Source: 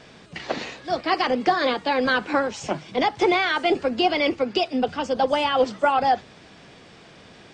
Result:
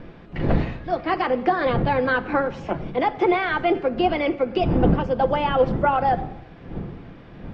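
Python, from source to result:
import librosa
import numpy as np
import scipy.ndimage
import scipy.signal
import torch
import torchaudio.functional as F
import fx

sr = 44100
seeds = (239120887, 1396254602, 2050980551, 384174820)

y = fx.dmg_wind(x, sr, seeds[0], corner_hz=240.0, level_db=-29.0)
y = scipy.signal.sosfilt(scipy.signal.butter(2, 2100.0, 'lowpass', fs=sr, output='sos'), y)
y = fx.room_shoebox(y, sr, seeds[1], volume_m3=4000.0, walls='furnished', distance_m=0.79)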